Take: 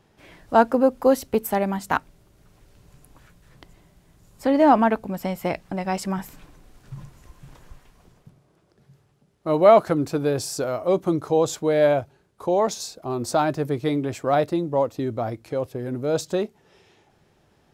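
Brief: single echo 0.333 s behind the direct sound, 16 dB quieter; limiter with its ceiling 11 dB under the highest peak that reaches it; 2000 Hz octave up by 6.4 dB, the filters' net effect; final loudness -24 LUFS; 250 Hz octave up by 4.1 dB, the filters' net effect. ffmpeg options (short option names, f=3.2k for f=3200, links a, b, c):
-af "equalizer=f=250:t=o:g=5,equalizer=f=2k:t=o:g=8.5,alimiter=limit=-10.5dB:level=0:latency=1,aecho=1:1:333:0.158,volume=-1dB"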